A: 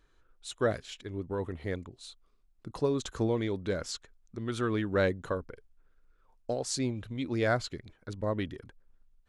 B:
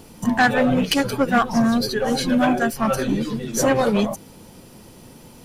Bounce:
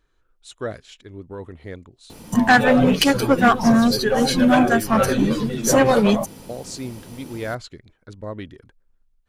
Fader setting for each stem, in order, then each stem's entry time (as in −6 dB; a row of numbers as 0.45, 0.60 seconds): −0.5, +3.0 decibels; 0.00, 2.10 seconds